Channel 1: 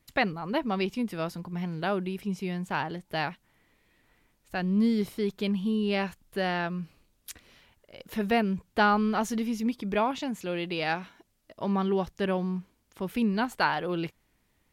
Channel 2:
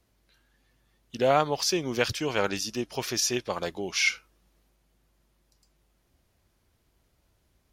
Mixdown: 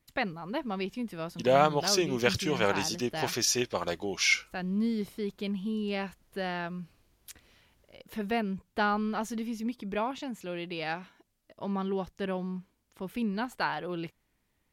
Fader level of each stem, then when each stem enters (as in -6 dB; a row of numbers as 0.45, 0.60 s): -5.0, -0.5 dB; 0.00, 0.25 s